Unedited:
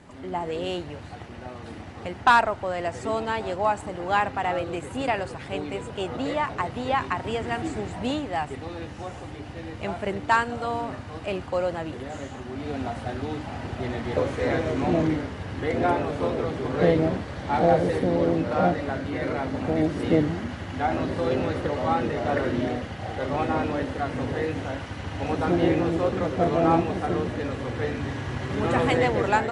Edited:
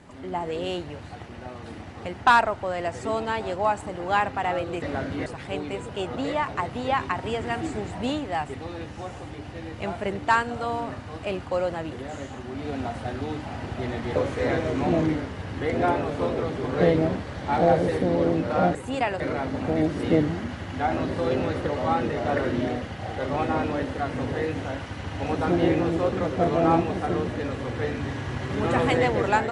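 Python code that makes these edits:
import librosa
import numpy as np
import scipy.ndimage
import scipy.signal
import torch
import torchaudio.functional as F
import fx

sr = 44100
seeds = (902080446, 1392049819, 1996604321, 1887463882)

y = fx.edit(x, sr, fx.swap(start_s=4.82, length_s=0.45, other_s=18.76, other_length_s=0.44), tone=tone)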